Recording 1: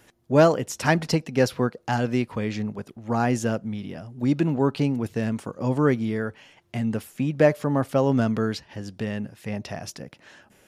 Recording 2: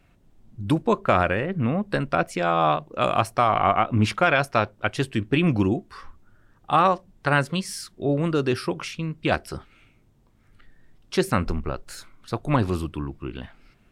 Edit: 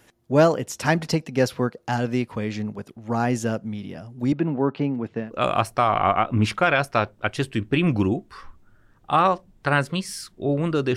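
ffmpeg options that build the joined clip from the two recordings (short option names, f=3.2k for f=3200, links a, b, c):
-filter_complex "[0:a]asettb=1/sr,asplit=3[a][b][c];[a]atrim=end=4.324[d];[b]atrim=start=4.32:end=5.32,asetpts=PTS-STARTPTS,afade=t=in:d=0.004:c=qsin,afade=t=out:st=0.996:d=0.004:c=qsin,highpass=140,lowpass=2.4k[e];[c]atrim=start=5.316[f];[d][e]acrossfade=d=0.004:c1=hsin:c2=qsin[g];[g][f]acrossfade=d=0.004:c1=qsin:c2=hsin,apad=whole_dur=10.96,atrim=end=10.96,atrim=end=5.32,asetpts=PTS-STARTPTS[h];[1:a]atrim=start=2.78:end=8.56,asetpts=PTS-STARTPTS[i];[h][i]acrossfade=d=0.14:c1=tri:c2=tri"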